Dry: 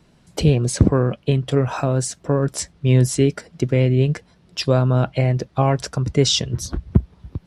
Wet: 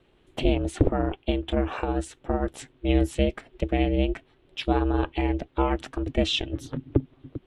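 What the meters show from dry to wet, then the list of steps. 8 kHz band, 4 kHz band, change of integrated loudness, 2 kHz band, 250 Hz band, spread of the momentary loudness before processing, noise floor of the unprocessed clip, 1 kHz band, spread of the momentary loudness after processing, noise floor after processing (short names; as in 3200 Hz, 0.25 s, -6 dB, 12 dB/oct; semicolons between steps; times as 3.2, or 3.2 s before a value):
-17.5 dB, -6.5 dB, -7.0 dB, -3.0 dB, -4.5 dB, 9 LU, -55 dBFS, -3.0 dB, 9 LU, -62 dBFS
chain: resonant high shelf 4000 Hz -7.5 dB, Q 3; ring modulator 200 Hz; gain -4 dB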